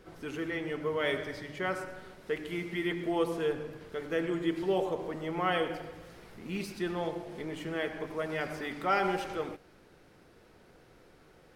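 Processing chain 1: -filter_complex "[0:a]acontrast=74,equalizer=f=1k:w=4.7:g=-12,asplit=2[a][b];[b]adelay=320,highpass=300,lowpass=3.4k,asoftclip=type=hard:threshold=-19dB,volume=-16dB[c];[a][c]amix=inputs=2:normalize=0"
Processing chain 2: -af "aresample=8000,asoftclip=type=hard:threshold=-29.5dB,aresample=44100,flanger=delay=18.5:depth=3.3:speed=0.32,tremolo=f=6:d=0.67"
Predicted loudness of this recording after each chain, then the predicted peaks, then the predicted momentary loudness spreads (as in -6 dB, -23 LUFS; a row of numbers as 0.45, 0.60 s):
-27.5, -42.0 LUFS; -10.0, -27.0 dBFS; 10, 9 LU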